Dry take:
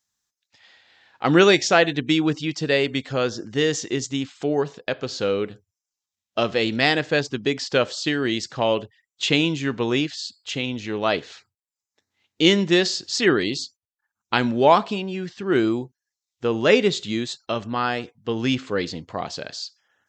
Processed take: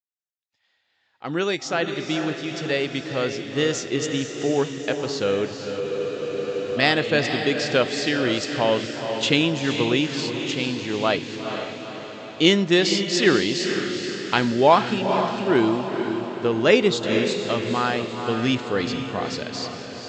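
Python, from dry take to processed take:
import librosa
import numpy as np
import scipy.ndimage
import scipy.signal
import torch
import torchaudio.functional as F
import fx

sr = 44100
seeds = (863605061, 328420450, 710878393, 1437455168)

p1 = fx.fade_in_head(x, sr, length_s=4.3)
p2 = p1 + fx.echo_diffused(p1, sr, ms=469, feedback_pct=56, wet_db=-6.5, dry=0)
y = fx.spec_freeze(p2, sr, seeds[0], at_s=5.82, hold_s=0.94)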